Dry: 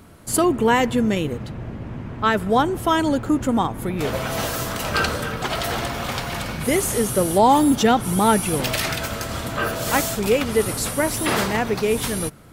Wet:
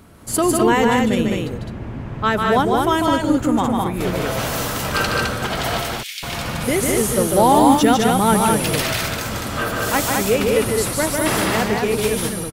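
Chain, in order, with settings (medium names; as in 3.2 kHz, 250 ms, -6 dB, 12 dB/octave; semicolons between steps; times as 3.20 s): 5.82–6.23 s: steep high-pass 2.2 kHz 36 dB/octave; on a send: loudspeakers at several distances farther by 51 m -4 dB, 72 m -3 dB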